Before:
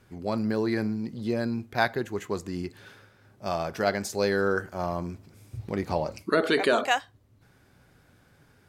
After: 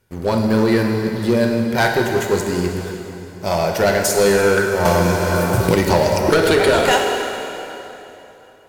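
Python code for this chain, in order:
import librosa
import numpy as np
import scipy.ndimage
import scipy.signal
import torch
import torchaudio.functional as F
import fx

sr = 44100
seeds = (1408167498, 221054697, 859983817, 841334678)

y = fx.high_shelf(x, sr, hz=8700.0, db=10.5)
y = fx.notch(y, sr, hz=1200.0, q=8.6)
y = y + 0.32 * np.pad(y, (int(2.1 * sr / 1000.0), 0))[:len(y)]
y = fx.leveller(y, sr, passes=3)
y = fx.rev_plate(y, sr, seeds[0], rt60_s=3.2, hf_ratio=0.85, predelay_ms=0, drr_db=1.5)
y = fx.band_squash(y, sr, depth_pct=100, at=(4.85, 6.93))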